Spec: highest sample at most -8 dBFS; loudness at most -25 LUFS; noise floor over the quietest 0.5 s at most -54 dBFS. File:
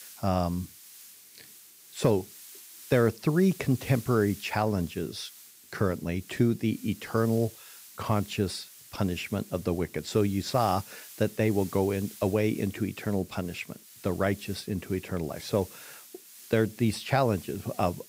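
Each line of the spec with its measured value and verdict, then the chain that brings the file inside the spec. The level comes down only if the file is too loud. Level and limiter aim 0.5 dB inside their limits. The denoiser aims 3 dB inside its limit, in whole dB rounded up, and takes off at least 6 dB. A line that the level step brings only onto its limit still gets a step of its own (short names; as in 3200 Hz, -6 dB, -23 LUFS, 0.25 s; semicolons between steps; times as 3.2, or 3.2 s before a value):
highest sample -11.5 dBFS: OK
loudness -29.0 LUFS: OK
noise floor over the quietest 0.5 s -52 dBFS: fail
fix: denoiser 6 dB, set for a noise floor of -52 dBFS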